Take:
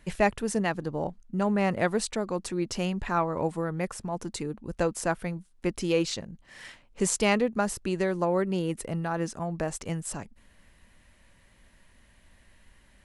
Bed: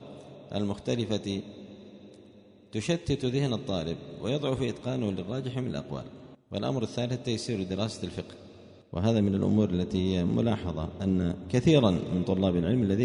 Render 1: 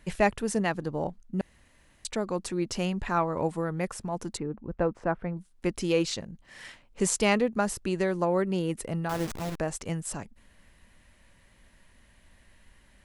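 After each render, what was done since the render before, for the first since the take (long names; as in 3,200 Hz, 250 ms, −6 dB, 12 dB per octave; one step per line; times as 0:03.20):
0:01.41–0:02.05: fill with room tone
0:04.37–0:05.37: low-pass filter 1,500 Hz
0:09.09–0:09.60: hold until the input has moved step −31 dBFS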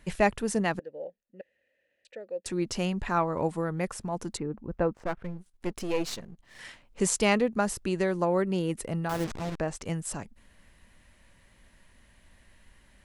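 0:00.79–0:02.46: formant filter e
0:04.94–0:06.59: gain on one half-wave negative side −12 dB
0:09.24–0:09.82: high-frequency loss of the air 54 metres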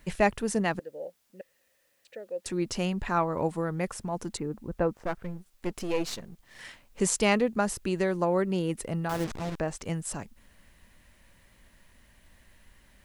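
bit-depth reduction 12 bits, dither triangular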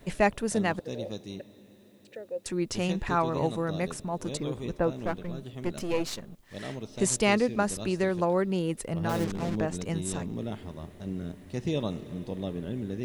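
mix in bed −8.5 dB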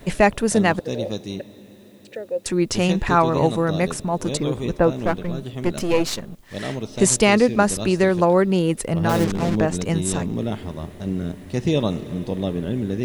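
level +9.5 dB
brickwall limiter −3 dBFS, peak gain reduction 3 dB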